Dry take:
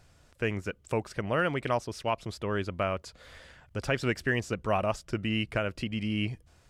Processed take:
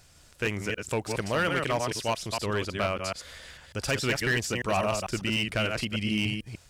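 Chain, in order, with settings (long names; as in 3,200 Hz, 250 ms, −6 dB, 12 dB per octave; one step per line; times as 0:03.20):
delay that plays each chunk backwards 149 ms, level −4.5 dB
high-shelf EQ 2,700 Hz +11.5 dB
gain into a clipping stage and back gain 20.5 dB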